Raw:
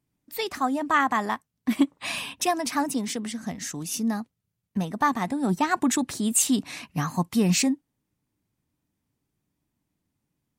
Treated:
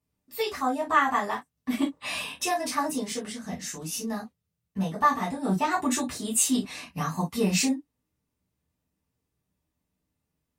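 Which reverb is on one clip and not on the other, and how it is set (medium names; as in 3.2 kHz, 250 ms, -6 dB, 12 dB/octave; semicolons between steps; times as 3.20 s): gated-style reverb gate 80 ms falling, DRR -7 dB; trim -8.5 dB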